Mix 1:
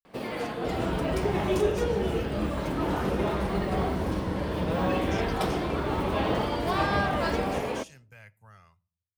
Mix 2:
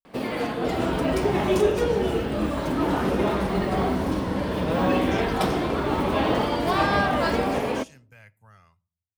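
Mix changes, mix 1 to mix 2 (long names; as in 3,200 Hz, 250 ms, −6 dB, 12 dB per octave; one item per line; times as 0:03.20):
first sound +4.5 dB
master: add parametric band 260 Hz +5 dB 0.29 octaves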